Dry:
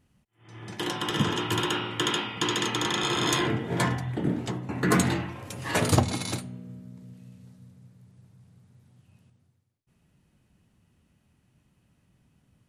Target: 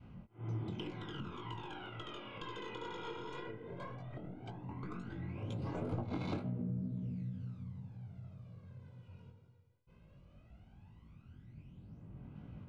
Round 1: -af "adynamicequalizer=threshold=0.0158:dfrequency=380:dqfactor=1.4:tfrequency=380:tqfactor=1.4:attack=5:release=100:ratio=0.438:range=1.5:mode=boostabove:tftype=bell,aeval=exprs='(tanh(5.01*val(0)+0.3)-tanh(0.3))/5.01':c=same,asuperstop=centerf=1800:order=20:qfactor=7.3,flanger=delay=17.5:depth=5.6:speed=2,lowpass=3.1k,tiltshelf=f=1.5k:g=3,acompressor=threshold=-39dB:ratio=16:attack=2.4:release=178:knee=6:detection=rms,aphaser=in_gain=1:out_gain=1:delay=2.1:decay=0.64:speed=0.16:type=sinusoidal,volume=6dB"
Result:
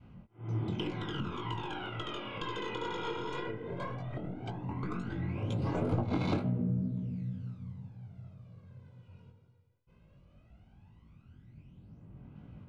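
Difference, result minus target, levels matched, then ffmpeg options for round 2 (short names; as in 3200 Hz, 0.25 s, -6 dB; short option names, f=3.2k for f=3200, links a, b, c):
compressor: peak gain reduction -7.5 dB
-af "adynamicequalizer=threshold=0.0158:dfrequency=380:dqfactor=1.4:tfrequency=380:tqfactor=1.4:attack=5:release=100:ratio=0.438:range=1.5:mode=boostabove:tftype=bell,aeval=exprs='(tanh(5.01*val(0)+0.3)-tanh(0.3))/5.01':c=same,asuperstop=centerf=1800:order=20:qfactor=7.3,flanger=delay=17.5:depth=5.6:speed=2,lowpass=3.1k,tiltshelf=f=1.5k:g=3,acompressor=threshold=-47dB:ratio=16:attack=2.4:release=178:knee=6:detection=rms,aphaser=in_gain=1:out_gain=1:delay=2.1:decay=0.64:speed=0.16:type=sinusoidal,volume=6dB"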